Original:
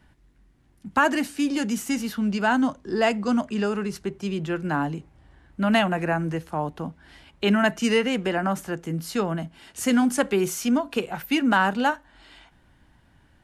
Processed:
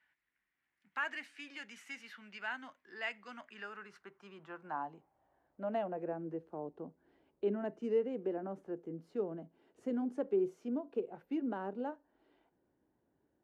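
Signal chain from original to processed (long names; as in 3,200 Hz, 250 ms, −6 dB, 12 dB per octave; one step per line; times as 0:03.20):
band-pass filter sweep 2,000 Hz → 410 Hz, 0:03.33–0:06.26
dynamic equaliser 1,500 Hz, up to −3 dB, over −41 dBFS, Q 0.83
level −7 dB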